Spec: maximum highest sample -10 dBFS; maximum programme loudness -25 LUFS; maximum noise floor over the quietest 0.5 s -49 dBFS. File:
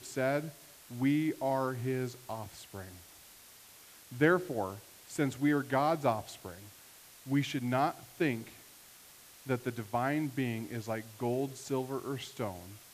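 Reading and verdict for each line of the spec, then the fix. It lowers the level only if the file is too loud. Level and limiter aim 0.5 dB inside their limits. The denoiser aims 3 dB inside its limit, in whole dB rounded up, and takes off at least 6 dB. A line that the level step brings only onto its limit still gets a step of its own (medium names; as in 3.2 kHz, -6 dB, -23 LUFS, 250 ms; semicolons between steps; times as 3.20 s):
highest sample -14.0 dBFS: pass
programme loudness -33.5 LUFS: pass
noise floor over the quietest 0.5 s -56 dBFS: pass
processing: none needed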